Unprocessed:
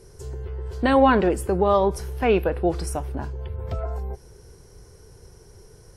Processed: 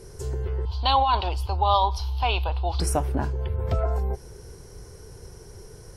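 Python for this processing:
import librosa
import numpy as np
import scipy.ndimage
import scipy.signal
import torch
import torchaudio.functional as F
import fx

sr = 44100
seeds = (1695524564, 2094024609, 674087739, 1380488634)

y = fx.curve_eq(x, sr, hz=(110.0, 160.0, 500.0, 910.0, 1800.0, 3100.0, 4400.0, 7900.0, 14000.0), db=(0, -29, -19, 4, -20, 6, 9, -20, -10), at=(0.65, 2.8))
y = fx.over_compress(y, sr, threshold_db=-22.0, ratio=-1.0)
y = F.gain(torch.from_numpy(y), 4.0).numpy()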